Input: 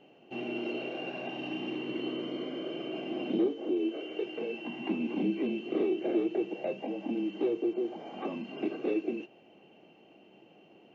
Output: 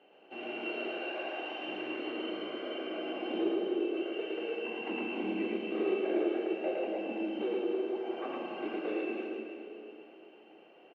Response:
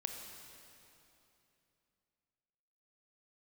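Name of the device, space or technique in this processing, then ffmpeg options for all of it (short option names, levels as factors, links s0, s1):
station announcement: -filter_complex "[0:a]highpass=400,lowpass=3600,equalizer=f=1500:t=o:w=0.44:g=5.5,aecho=1:1:110.8|285.7:0.891|0.355[s0];[1:a]atrim=start_sample=2205[s1];[s0][s1]afir=irnorm=-1:irlink=0,asettb=1/sr,asplit=3[s2][s3][s4];[s2]atrim=end=1.034[s5];[s3]atrim=start=1.03:end=1.69,asetpts=PTS-STARTPTS,afade=t=in:d=0.004:c=qsin,afade=t=out:st=0.656:d=0.004:c=qsin,highpass=280[s6];[s4]atrim=start=1.686[s7];[s5][s6]acrossfade=d=0.004:c1=hsin:c2=qsin[s8];[s8][s7]acrossfade=d=0.004:c1=qsin:c2=hsin"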